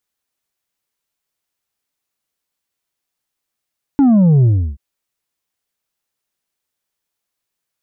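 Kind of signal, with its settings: sub drop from 290 Hz, over 0.78 s, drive 4.5 dB, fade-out 0.33 s, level -8 dB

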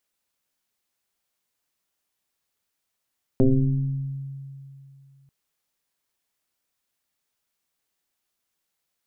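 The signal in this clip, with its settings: FM tone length 1.89 s, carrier 137 Hz, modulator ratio 0.93, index 2.5, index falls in 1.58 s exponential, decay 2.70 s, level -12.5 dB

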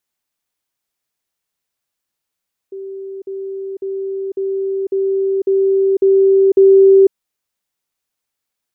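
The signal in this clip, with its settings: level ladder 388 Hz -25.5 dBFS, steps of 3 dB, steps 8, 0.50 s 0.05 s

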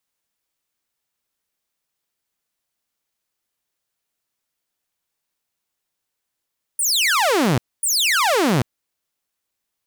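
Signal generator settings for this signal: burst of laser zaps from 10000 Hz, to 110 Hz, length 0.79 s saw, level -12.5 dB, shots 2, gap 0.25 s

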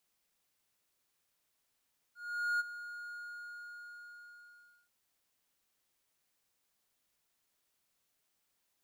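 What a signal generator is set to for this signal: ADSR triangle 1430 Hz, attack 0.449 s, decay 23 ms, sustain -14 dB, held 0.98 s, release 1.76 s -26.5 dBFS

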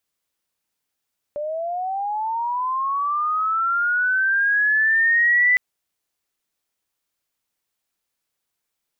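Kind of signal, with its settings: chirp linear 580 Hz -> 2000 Hz -24 dBFS -> -13 dBFS 4.21 s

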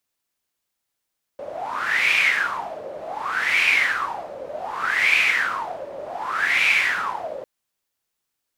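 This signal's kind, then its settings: wind-like swept noise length 6.05 s, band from 550 Hz, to 2400 Hz, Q 9.5, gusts 4, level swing 16 dB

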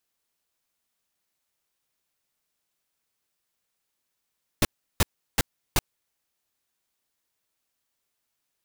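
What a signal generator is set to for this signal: noise bursts pink, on 0.03 s, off 0.35 s, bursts 4, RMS -19.5 dBFS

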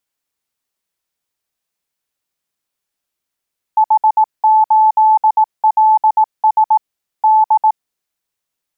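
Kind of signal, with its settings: Morse "H8LS D" 18 wpm 869 Hz -6.5 dBFS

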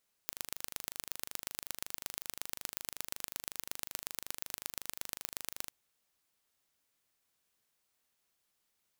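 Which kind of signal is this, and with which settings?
pulse train 25.4/s, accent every 3, -8.5 dBFS 5.41 s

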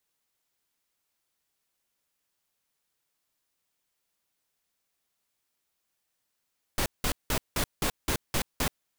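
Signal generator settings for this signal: noise bursts pink, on 0.08 s, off 0.18 s, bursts 8, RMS -27 dBFS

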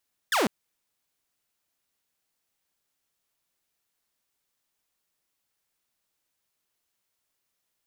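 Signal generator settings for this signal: laser zap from 1900 Hz, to 180 Hz, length 0.15 s saw, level -18.5 dB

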